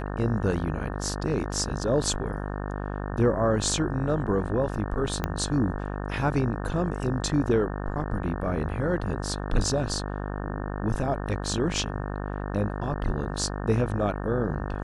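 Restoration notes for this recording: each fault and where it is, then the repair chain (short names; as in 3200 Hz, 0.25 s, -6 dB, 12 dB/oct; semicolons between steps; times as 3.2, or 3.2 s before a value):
buzz 50 Hz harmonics 36 -32 dBFS
5.24 pop -13 dBFS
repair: de-click; de-hum 50 Hz, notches 36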